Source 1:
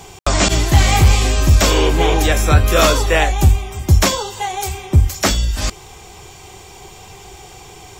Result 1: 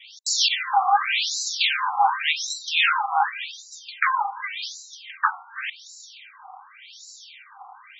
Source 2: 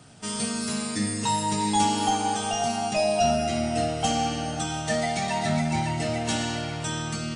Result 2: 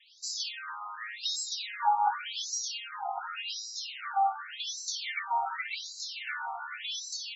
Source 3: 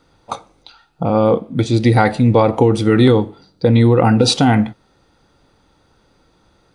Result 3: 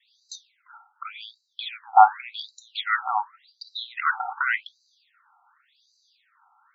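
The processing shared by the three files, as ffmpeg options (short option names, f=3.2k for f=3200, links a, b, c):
-af "adynamicequalizer=threshold=0.0447:dfrequency=480:dqfactor=1.2:tfrequency=480:tqfactor=1.2:attack=5:release=100:ratio=0.375:range=3:mode=boostabove:tftype=bell,afftfilt=real='re*between(b*sr/1024,980*pow(5500/980,0.5+0.5*sin(2*PI*0.88*pts/sr))/1.41,980*pow(5500/980,0.5+0.5*sin(2*PI*0.88*pts/sr))*1.41)':imag='im*between(b*sr/1024,980*pow(5500/980,0.5+0.5*sin(2*PI*0.88*pts/sr))/1.41,980*pow(5500/980,0.5+0.5*sin(2*PI*0.88*pts/sr))*1.41)':win_size=1024:overlap=0.75,volume=2.5dB"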